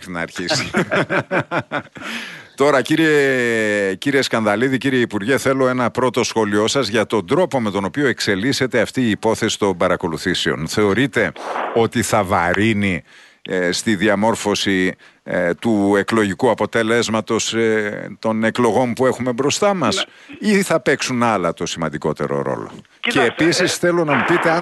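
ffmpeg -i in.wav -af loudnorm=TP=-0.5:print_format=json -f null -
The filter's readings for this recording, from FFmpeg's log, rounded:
"input_i" : "-17.8",
"input_tp" : "-3.2",
"input_lra" : "1.6",
"input_thresh" : "-27.9",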